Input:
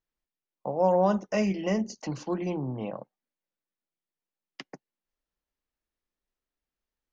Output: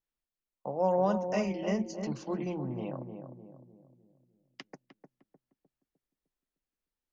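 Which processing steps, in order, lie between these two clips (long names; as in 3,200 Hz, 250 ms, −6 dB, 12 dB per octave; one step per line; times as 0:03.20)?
feedback echo with a low-pass in the loop 304 ms, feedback 47%, low-pass 810 Hz, level −6 dB
level −4.5 dB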